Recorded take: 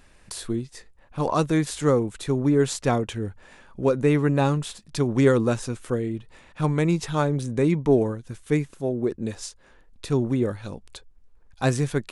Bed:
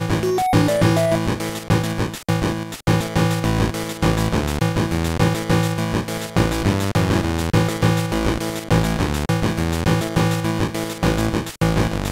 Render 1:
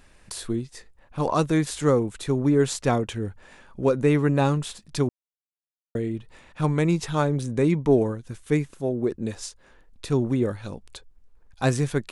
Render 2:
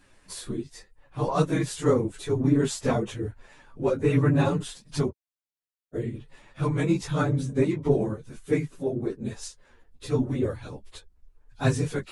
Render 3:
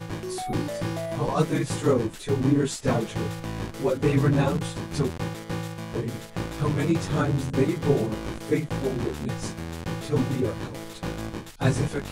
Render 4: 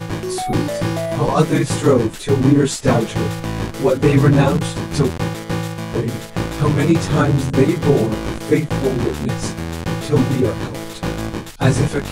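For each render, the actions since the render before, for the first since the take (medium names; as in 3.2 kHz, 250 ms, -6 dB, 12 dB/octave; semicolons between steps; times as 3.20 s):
5.09–5.95 s: mute
phase randomisation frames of 50 ms; chorus voices 4, 0.85 Hz, delay 11 ms, depth 4.3 ms
add bed -13.5 dB
trim +9 dB; peak limiter -2 dBFS, peak gain reduction 3 dB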